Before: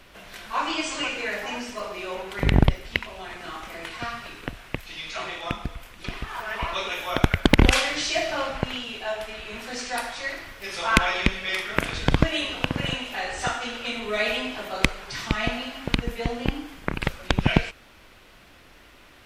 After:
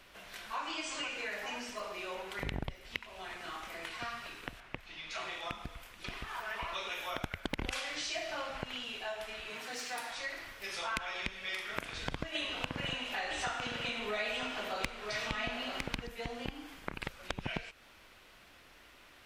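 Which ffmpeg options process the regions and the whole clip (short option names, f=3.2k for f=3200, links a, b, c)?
-filter_complex "[0:a]asettb=1/sr,asplit=3[a][b][c];[a]atrim=end=4.604[d];[b]atrim=start=4.6:end=5.11,asetpts=PTS-STARTPTS,afade=t=in:d=0.004:c=qsin,afade=t=out:st=0.506:d=0.004:c=qsin,lowpass=f=2.1k:p=1,bandreject=f=490:w=12[e];[c]atrim=start=5.106[f];[d][e]acrossfade=d=0.004:c1=hsin:c2=qsin[g];[g][f]acrossfade=d=0.004:c1=qsin:c2=hsin,asettb=1/sr,asplit=3[h][i][j];[h]atrim=end=9.504[k];[i]atrim=start=9.5:end=10.11,asetpts=PTS-STARTPTS,afade=t=in:d=0.004:c=qsin,afade=t=out:st=0.606:d=0.004:c=qsin,aeval=exprs='clip(val(0),-1,0.0224)':c=same,highpass=f=120:w=0.5412,highpass=f=120:w=1.3066,aecho=1:1:6.6:0.37,atrim=end_sample=26901[l];[j]atrim=start=10.106[m];[k][l]acrossfade=d=0.004:c1=hsin:c2=qsin[n];[n][m]acrossfade=d=0.004:c1=qsin:c2=hsin,asettb=1/sr,asplit=3[o][p][q];[o]atrim=end=12.354[r];[p]atrim=start=12.35:end=16.07,asetpts=PTS-STARTPTS,afade=t=in:d=0.004:c=qsin,afade=t=out:st=3.716:d=0.004:c=qsin,highshelf=f=6.7k:g=-6,acontrast=81,aecho=1:1:957:0.376,atrim=end_sample=164052[s];[q]atrim=start=16.066[t];[r][s]acrossfade=d=0.004:c1=hsin:c2=qsin[u];[u][t]acrossfade=d=0.004:c1=qsin:c2=hsin,lowshelf=f=450:g=-6,acompressor=threshold=-31dB:ratio=3,volume=-5.5dB"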